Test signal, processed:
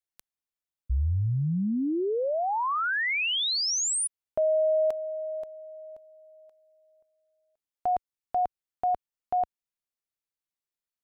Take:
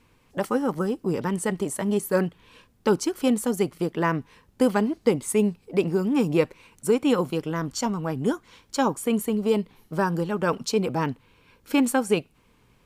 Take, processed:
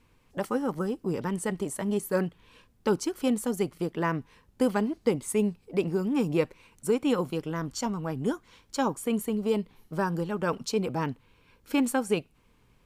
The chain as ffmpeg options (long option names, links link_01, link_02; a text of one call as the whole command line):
ffmpeg -i in.wav -af "lowshelf=frequency=61:gain=6.5,volume=-4.5dB" out.wav